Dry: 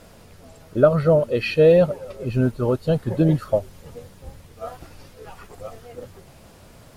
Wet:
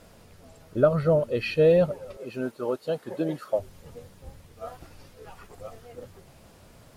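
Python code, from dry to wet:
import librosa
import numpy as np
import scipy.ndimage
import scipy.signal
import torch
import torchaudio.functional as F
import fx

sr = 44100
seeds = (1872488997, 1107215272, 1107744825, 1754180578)

y = fx.highpass(x, sr, hz=330.0, slope=12, at=(2.17, 3.59))
y = F.gain(torch.from_numpy(y), -5.0).numpy()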